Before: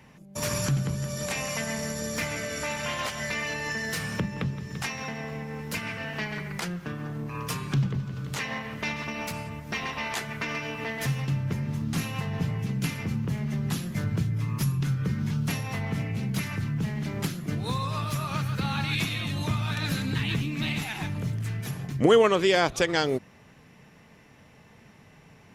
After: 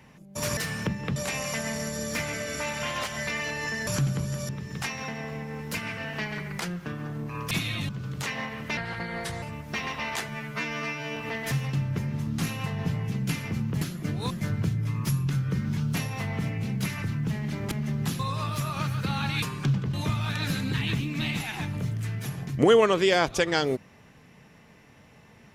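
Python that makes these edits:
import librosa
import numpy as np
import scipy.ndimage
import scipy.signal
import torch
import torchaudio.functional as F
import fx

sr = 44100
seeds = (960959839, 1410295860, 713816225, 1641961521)

y = fx.edit(x, sr, fx.swap(start_s=0.57, length_s=0.62, other_s=3.9, other_length_s=0.59),
    fx.swap(start_s=7.51, length_s=0.51, other_s=18.97, other_length_s=0.38),
    fx.speed_span(start_s=8.9, length_s=0.51, speed=0.78),
    fx.stretch_span(start_s=10.27, length_s=0.44, factor=2.0),
    fx.swap(start_s=13.36, length_s=0.48, other_s=17.25, other_length_s=0.49), tone=tone)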